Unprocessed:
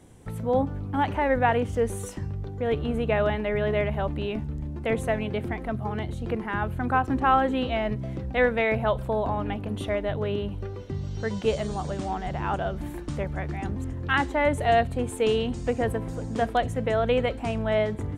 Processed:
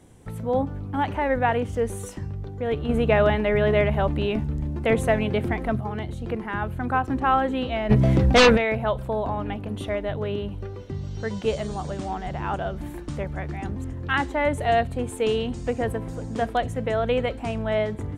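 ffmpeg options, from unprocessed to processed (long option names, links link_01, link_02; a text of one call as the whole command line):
ffmpeg -i in.wav -filter_complex "[0:a]asettb=1/sr,asplit=3[link_01][link_02][link_03];[link_01]atrim=end=2.894[link_04];[link_02]atrim=start=2.89:end=5.81,asetpts=PTS-STARTPTS,afade=type=in:duration=0.004:curve=qsin,afade=type=out:start_time=2.916:duration=0.004:curve=qsin,acontrast=26[link_05];[link_03]atrim=start=5.806[link_06];[link_04][link_05]acrossfade=duration=0.004:curve1=hsin:curve2=qsin[link_07];[link_07][link_06]acrossfade=duration=0.004:curve1=qsin:curve2=hsin,asplit=3[link_08][link_09][link_10];[link_08]afade=type=out:start_time=7.89:duration=0.02[link_11];[link_09]aeval=exprs='0.316*sin(PI/2*3.55*val(0)/0.316)':channel_layout=same,afade=type=in:start_time=7.89:duration=0.02,afade=type=out:start_time=8.56:duration=0.02[link_12];[link_10]afade=type=in:start_time=8.56:duration=0.02[link_13];[link_11][link_12][link_13]amix=inputs=3:normalize=0" out.wav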